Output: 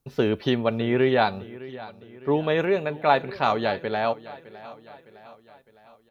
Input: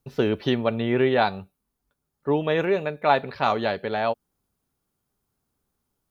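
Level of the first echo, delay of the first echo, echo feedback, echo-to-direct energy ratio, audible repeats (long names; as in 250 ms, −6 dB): −18.0 dB, 609 ms, 52%, −16.5 dB, 3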